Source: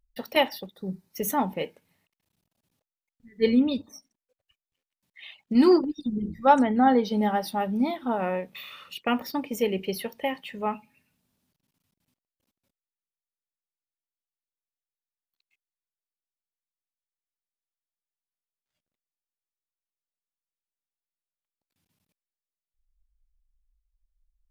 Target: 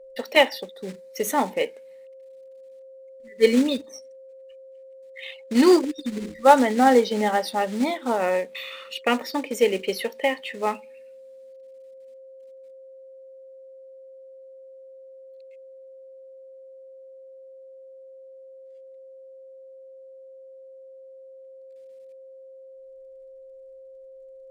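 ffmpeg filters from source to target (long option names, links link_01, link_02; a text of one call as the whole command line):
ffmpeg -i in.wav -af "acrusher=bits=5:mode=log:mix=0:aa=0.000001,aeval=exprs='val(0)+0.00316*sin(2*PI*530*n/s)':channel_layout=same,equalizer=frequency=125:width_type=o:width=1:gain=-11,equalizer=frequency=250:width_type=o:width=1:gain=6,equalizer=frequency=500:width_type=o:width=1:gain=11,equalizer=frequency=1000:width_type=o:width=1:gain=4,equalizer=frequency=2000:width_type=o:width=1:gain=11,equalizer=frequency=4000:width_type=o:width=1:gain=7,equalizer=frequency=8000:width_type=o:width=1:gain=10,volume=-5.5dB" out.wav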